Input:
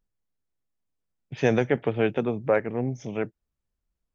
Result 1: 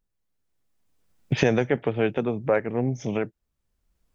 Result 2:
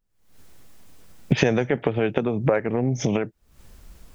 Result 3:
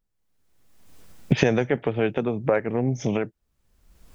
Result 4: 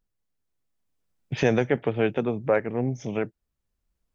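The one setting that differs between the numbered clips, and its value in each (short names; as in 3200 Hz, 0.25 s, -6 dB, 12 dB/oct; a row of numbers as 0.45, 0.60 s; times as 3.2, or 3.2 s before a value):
recorder AGC, rising by: 14, 89, 36, 5.6 dB/s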